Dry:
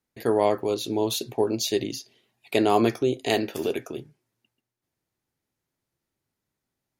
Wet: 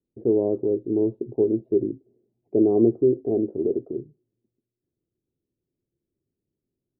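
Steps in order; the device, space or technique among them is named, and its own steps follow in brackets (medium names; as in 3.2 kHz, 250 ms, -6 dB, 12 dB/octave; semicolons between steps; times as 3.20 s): under water (low-pass 470 Hz 24 dB/octave; peaking EQ 360 Hz +6 dB 0.52 oct); trim +1 dB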